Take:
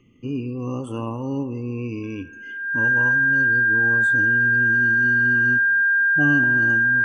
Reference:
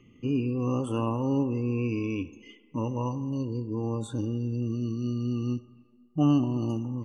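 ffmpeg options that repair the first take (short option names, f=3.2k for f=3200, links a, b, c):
-af "bandreject=f=1.6k:w=30"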